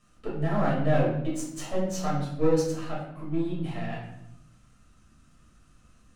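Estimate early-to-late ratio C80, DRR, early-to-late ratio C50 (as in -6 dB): 6.5 dB, -7.5 dB, 3.0 dB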